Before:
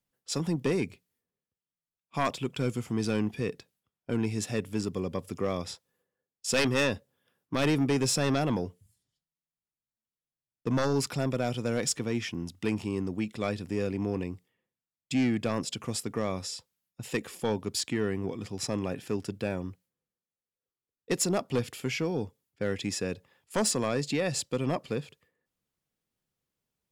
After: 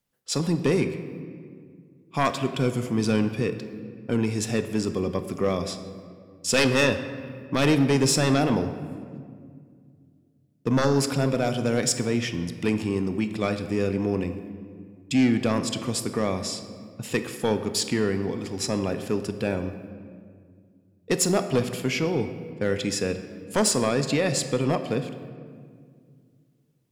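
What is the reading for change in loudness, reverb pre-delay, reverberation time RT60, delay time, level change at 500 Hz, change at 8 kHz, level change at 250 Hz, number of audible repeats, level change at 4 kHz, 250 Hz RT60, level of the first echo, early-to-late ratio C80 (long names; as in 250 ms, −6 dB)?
+5.5 dB, 5 ms, 2.0 s, no echo audible, +6.0 dB, +5.0 dB, +6.0 dB, no echo audible, +5.5 dB, 3.0 s, no echo audible, 11.0 dB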